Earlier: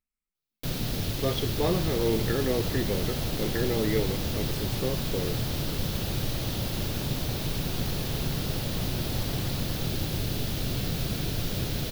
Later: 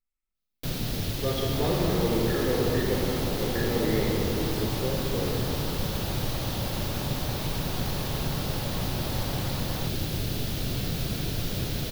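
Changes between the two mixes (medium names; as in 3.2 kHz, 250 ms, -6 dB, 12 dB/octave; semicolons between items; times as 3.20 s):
speech -5.0 dB; second sound +7.5 dB; reverb: on, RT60 2.7 s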